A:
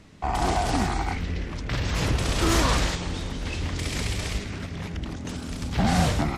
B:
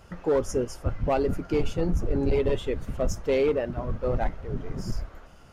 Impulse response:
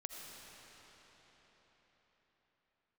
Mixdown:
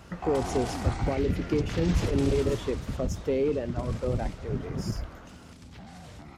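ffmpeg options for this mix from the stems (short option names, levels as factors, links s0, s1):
-filter_complex "[0:a]alimiter=limit=0.0891:level=0:latency=1:release=97,volume=0.668,afade=t=out:st=2.05:d=0.77:silence=0.237137[s0];[1:a]acrossover=split=380[s1][s2];[s2]acompressor=threshold=0.0178:ratio=10[s3];[s1][s3]amix=inputs=2:normalize=0,volume=1.26[s4];[s0][s4]amix=inputs=2:normalize=0,highpass=51"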